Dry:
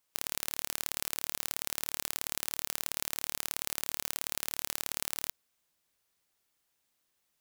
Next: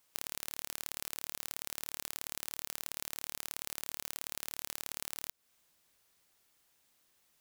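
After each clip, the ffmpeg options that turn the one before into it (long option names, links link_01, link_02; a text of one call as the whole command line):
ffmpeg -i in.wav -af "acompressor=threshold=-38dB:ratio=10,volume=6dB" out.wav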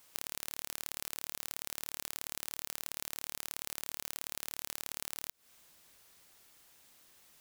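ffmpeg -i in.wav -af "acompressor=threshold=-42dB:ratio=6,volume=9.5dB" out.wav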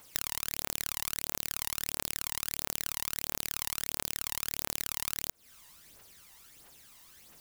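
ffmpeg -i in.wav -af "aphaser=in_gain=1:out_gain=1:delay=1.1:decay=0.6:speed=1.5:type=triangular,volume=4.5dB" out.wav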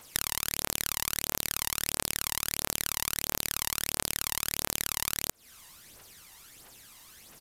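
ffmpeg -i in.wav -af "aresample=32000,aresample=44100,volume=5dB" out.wav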